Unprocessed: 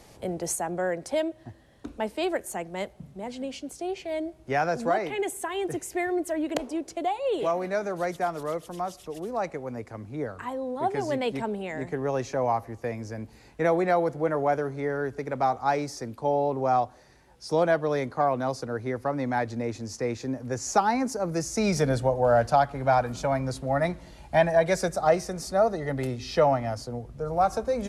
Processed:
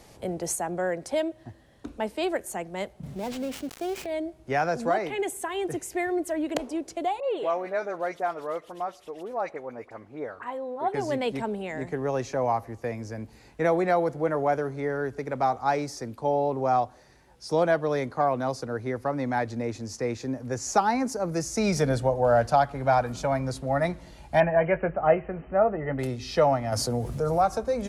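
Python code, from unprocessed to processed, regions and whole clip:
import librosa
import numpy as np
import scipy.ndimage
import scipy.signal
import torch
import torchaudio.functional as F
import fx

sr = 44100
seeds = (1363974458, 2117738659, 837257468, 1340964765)

y = fx.chain(x, sr, fx.dead_time(dead_ms=0.13),
    fx.env_flatten(amount_pct=50), at=(3.03, 4.06))
y = fx.chain(y, sr, fx.bass_treble(bass_db=-14, treble_db=-11),
    fx.dispersion(late='highs', ms=41.0, hz=1800.0), at=(7.2, 10.94))
y = fx.chain(y, sr, fx.brickwall_lowpass(high_hz=3100.0),
    fx.doubler(ms=19.0, db=-12.5), at=(24.4, 25.99))
y = fx.chain(y, sr, fx.highpass(hz=62.0, slope=12),
    fx.high_shelf(hz=7100.0, db=10.5),
    fx.env_flatten(amount_pct=50), at=(26.72, 27.41))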